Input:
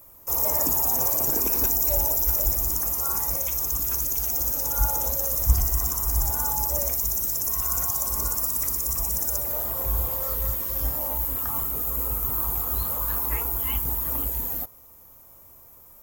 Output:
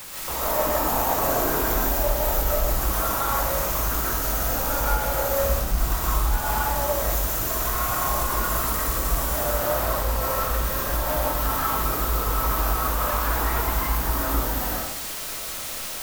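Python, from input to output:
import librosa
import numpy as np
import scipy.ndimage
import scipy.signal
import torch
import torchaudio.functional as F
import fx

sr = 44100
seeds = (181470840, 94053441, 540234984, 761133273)

p1 = fx.high_shelf_res(x, sr, hz=2300.0, db=-12.5, q=3.0)
p2 = fx.over_compress(p1, sr, threshold_db=-32.0, ratio=-1.0)
p3 = p1 + F.gain(torch.from_numpy(p2), 2.5).numpy()
p4 = fx.quant_dither(p3, sr, seeds[0], bits=6, dither='triangular')
p5 = 10.0 ** (-22.5 / 20.0) * np.tanh(p4 / 10.0 ** (-22.5 / 20.0))
p6 = fx.rev_freeverb(p5, sr, rt60_s=0.8, hf_ratio=0.95, predelay_ms=95, drr_db=-6.5)
y = F.gain(torch.from_numpy(p6), -2.5).numpy()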